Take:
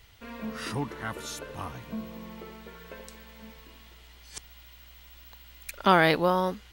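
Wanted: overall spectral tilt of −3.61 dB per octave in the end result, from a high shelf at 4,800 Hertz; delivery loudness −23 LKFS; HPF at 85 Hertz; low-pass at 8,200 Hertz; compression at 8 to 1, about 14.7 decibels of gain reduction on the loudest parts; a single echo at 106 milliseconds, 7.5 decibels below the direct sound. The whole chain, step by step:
high-pass filter 85 Hz
low-pass filter 8,200 Hz
high-shelf EQ 4,800 Hz +6.5 dB
downward compressor 8 to 1, threshold −30 dBFS
single-tap delay 106 ms −7.5 dB
level +15 dB

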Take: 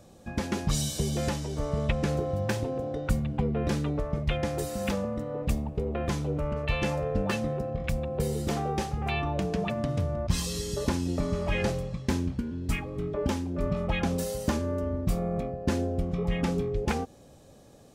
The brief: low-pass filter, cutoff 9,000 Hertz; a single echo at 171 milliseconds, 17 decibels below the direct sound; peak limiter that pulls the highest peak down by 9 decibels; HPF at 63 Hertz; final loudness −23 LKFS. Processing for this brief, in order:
high-pass filter 63 Hz
low-pass filter 9,000 Hz
brickwall limiter −21.5 dBFS
single-tap delay 171 ms −17 dB
level +9 dB

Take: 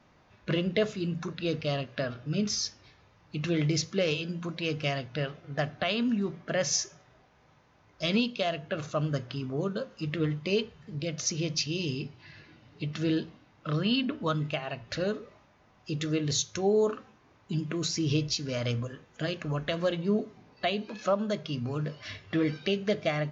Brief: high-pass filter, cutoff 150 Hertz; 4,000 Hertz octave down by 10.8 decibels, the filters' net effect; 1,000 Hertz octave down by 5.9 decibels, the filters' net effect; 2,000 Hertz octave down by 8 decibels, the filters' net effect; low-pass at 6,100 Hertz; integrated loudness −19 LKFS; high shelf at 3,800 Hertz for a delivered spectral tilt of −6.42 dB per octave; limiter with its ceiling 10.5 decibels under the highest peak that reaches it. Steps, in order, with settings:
high-pass filter 150 Hz
low-pass filter 6,100 Hz
parametric band 1,000 Hz −7.5 dB
parametric band 2,000 Hz −3.5 dB
high-shelf EQ 3,800 Hz −8 dB
parametric band 4,000 Hz −7 dB
level +19 dB
brickwall limiter −8.5 dBFS

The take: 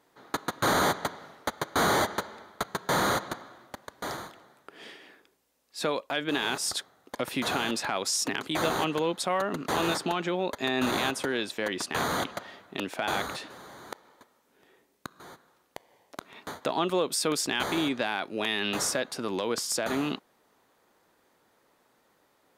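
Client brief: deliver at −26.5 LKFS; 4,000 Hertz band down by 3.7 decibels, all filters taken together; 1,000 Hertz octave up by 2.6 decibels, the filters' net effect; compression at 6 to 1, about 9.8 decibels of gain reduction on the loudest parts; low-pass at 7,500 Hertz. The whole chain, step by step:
low-pass filter 7,500 Hz
parametric band 1,000 Hz +3.5 dB
parametric band 4,000 Hz −4.5 dB
downward compressor 6 to 1, threshold −31 dBFS
level +10 dB

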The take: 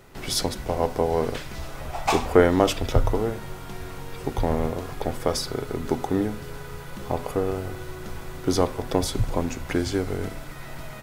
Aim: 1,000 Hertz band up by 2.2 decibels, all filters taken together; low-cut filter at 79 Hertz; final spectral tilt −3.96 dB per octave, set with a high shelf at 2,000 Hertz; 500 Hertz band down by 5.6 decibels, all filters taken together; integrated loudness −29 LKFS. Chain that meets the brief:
high-pass filter 79 Hz
parametric band 500 Hz −8.5 dB
parametric band 1,000 Hz +4 dB
high-shelf EQ 2,000 Hz +8.5 dB
level −3 dB

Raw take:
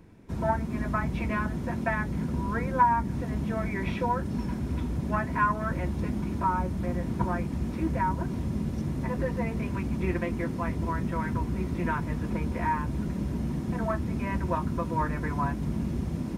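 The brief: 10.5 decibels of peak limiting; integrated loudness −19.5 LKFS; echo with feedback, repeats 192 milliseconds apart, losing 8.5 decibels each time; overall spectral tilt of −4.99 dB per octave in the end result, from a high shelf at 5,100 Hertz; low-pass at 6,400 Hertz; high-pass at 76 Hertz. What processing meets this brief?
high-pass filter 76 Hz
low-pass filter 6,400 Hz
high-shelf EQ 5,100 Hz +7 dB
brickwall limiter −21.5 dBFS
repeating echo 192 ms, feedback 38%, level −8.5 dB
level +11.5 dB

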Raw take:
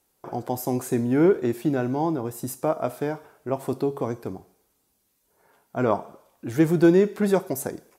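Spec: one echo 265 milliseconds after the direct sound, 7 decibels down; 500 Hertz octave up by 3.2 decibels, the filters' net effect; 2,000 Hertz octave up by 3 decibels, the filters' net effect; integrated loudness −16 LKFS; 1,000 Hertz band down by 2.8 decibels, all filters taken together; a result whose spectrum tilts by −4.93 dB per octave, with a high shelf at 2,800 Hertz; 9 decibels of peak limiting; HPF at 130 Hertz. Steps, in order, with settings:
high-pass filter 130 Hz
parametric band 500 Hz +6 dB
parametric band 1,000 Hz −9 dB
parametric band 2,000 Hz +5.5 dB
high-shelf EQ 2,800 Hz +6 dB
brickwall limiter −14.5 dBFS
single-tap delay 265 ms −7 dB
level +9.5 dB

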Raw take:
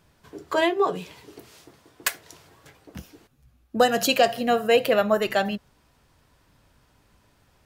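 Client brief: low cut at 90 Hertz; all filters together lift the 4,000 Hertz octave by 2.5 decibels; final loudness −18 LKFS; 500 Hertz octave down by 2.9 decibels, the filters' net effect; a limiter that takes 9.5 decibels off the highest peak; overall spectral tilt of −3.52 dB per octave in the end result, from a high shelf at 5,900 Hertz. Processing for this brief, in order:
high-pass filter 90 Hz
parametric band 500 Hz −3.5 dB
parametric band 4,000 Hz +6 dB
high-shelf EQ 5,900 Hz −7.5 dB
level +9 dB
brickwall limiter −6 dBFS

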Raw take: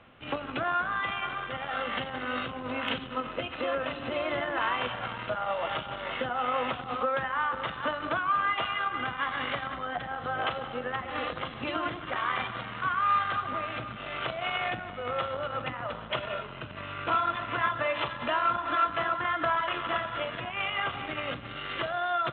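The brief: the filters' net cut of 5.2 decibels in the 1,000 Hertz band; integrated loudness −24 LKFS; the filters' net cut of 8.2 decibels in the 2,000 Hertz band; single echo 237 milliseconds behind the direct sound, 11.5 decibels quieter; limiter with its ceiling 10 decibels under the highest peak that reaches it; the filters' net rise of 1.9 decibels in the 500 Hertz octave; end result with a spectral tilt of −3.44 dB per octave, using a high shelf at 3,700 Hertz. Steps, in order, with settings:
parametric band 500 Hz +4.5 dB
parametric band 1,000 Hz −4.5 dB
parametric band 2,000 Hz −8.5 dB
high-shelf EQ 3,700 Hz −5 dB
brickwall limiter −27.5 dBFS
single-tap delay 237 ms −11.5 dB
level +13 dB

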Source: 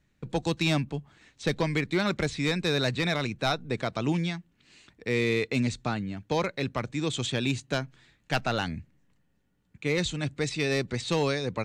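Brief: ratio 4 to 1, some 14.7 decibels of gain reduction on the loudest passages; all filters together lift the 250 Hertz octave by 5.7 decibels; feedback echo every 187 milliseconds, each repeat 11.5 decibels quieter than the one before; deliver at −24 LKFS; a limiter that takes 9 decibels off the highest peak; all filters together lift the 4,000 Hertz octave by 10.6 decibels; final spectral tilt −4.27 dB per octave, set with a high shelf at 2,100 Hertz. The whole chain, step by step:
parametric band 250 Hz +7.5 dB
high-shelf EQ 2,100 Hz +5 dB
parametric band 4,000 Hz +7.5 dB
downward compressor 4 to 1, threshold −35 dBFS
brickwall limiter −27.5 dBFS
repeating echo 187 ms, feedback 27%, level −11.5 dB
level +14.5 dB

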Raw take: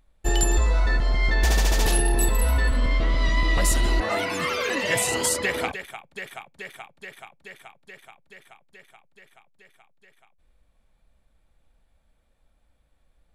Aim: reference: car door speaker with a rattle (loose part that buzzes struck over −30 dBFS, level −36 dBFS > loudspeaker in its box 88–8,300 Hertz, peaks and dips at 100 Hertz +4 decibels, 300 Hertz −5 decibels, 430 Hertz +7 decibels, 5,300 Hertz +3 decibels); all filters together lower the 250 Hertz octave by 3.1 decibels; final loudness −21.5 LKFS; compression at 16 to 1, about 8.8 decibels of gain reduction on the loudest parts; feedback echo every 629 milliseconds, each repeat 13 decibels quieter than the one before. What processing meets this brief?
parametric band 250 Hz −3 dB
downward compressor 16 to 1, threshold −25 dBFS
repeating echo 629 ms, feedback 22%, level −13 dB
loose part that buzzes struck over −30 dBFS, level −36 dBFS
loudspeaker in its box 88–8,300 Hz, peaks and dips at 100 Hz +4 dB, 300 Hz −5 dB, 430 Hz +7 dB, 5,300 Hz +3 dB
level +10.5 dB

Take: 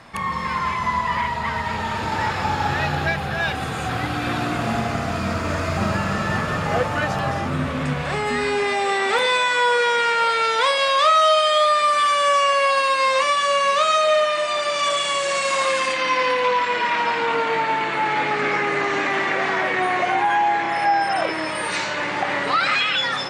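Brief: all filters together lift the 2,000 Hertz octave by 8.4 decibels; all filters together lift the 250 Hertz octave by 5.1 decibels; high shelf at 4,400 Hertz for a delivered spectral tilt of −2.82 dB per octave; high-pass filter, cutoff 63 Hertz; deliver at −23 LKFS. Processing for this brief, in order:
high-pass filter 63 Hz
parametric band 250 Hz +6.5 dB
parametric band 2,000 Hz +8.5 dB
high-shelf EQ 4,400 Hz +8 dB
level −8 dB

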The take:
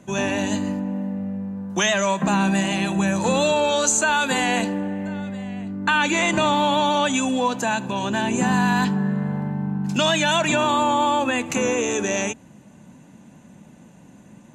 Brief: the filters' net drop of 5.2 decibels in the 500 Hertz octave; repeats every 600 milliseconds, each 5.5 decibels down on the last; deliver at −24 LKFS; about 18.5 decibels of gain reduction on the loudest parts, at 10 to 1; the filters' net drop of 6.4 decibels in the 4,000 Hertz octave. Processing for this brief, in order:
parametric band 500 Hz −6.5 dB
parametric band 4,000 Hz −8.5 dB
downward compressor 10 to 1, threshold −37 dBFS
repeating echo 600 ms, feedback 53%, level −5.5 dB
level +15 dB

